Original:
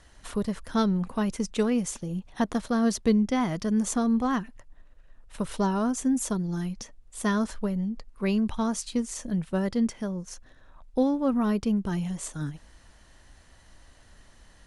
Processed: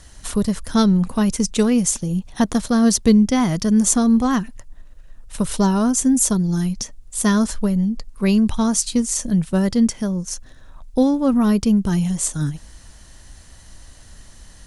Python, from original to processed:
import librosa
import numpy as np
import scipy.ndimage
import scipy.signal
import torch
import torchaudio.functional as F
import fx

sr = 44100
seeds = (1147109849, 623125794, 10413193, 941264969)

y = fx.bass_treble(x, sr, bass_db=6, treble_db=10)
y = F.gain(torch.from_numpy(y), 5.5).numpy()